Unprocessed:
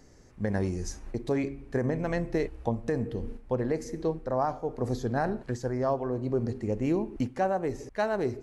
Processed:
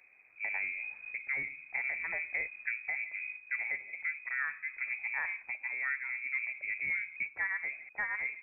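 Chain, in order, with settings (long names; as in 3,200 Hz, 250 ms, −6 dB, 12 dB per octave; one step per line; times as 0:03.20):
voice inversion scrambler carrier 2,500 Hz
level −7.5 dB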